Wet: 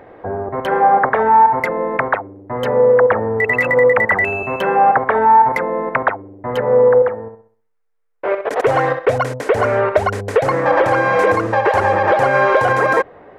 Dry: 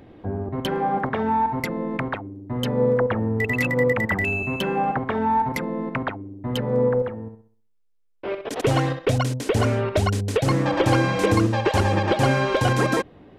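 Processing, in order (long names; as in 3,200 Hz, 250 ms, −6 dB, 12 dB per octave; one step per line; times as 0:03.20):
brickwall limiter −14.5 dBFS, peak gain reduction 7.5 dB
flat-topped bell 950 Hz +15 dB 2.7 octaves
level −2.5 dB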